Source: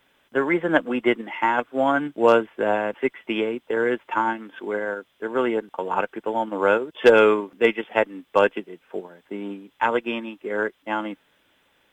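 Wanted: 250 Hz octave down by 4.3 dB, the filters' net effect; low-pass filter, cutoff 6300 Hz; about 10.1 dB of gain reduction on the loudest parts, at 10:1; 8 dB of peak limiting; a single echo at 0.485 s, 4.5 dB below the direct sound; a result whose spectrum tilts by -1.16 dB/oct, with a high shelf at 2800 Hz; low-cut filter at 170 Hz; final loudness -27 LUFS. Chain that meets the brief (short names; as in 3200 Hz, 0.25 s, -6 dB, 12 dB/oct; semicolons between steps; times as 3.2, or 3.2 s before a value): HPF 170 Hz; LPF 6300 Hz; bell 250 Hz -5.5 dB; high shelf 2800 Hz +8 dB; compressor 10:1, threshold -19 dBFS; limiter -15.5 dBFS; echo 0.485 s -4.5 dB; gain +1 dB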